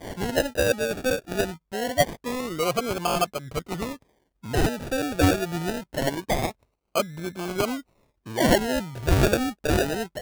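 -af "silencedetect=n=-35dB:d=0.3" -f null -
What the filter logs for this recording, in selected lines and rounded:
silence_start: 3.95
silence_end: 4.44 | silence_duration: 0.49
silence_start: 6.51
silence_end: 6.95 | silence_duration: 0.45
silence_start: 7.80
silence_end: 8.27 | silence_duration: 0.46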